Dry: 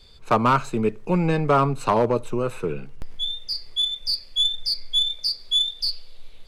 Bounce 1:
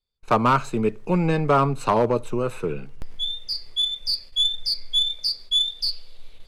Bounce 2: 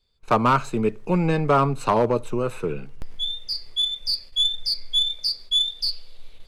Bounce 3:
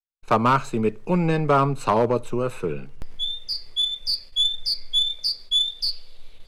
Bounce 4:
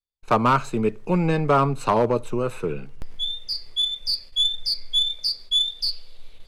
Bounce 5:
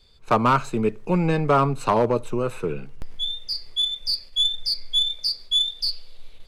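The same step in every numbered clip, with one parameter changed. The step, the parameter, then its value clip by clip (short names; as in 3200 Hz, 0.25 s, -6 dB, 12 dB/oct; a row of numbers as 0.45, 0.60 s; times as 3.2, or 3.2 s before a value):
gate, range: -34, -20, -60, -47, -6 dB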